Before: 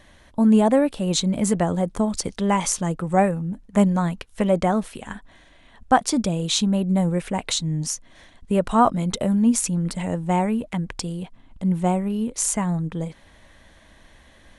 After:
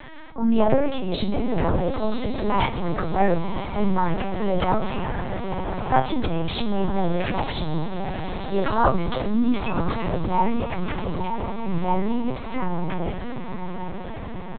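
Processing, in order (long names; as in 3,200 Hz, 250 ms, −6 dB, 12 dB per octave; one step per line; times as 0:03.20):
parametric band 1,000 Hz +4 dB 0.96 octaves
hum removal 270.9 Hz, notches 39
transient designer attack −11 dB, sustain +9 dB
pitch-shifted copies added −5 semitones −16 dB, +4 semitones −8 dB
high-frequency loss of the air 96 metres
tuned comb filter 130 Hz, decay 0.32 s, harmonics all, mix 80%
feedback delay with all-pass diffusion 993 ms, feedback 61%, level −10 dB
four-comb reverb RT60 3.7 s, combs from 28 ms, DRR 17 dB
linear-prediction vocoder at 8 kHz pitch kept
multiband upward and downward compressor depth 40%
level +9 dB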